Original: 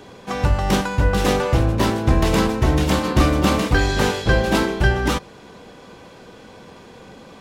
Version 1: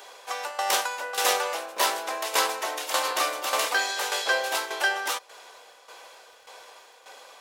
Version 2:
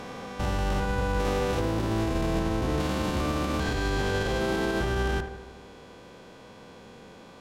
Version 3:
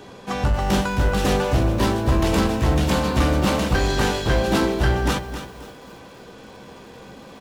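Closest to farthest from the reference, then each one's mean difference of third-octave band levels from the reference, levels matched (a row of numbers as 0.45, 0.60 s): 3, 2, 1; 2.5, 4.0, 12.5 dB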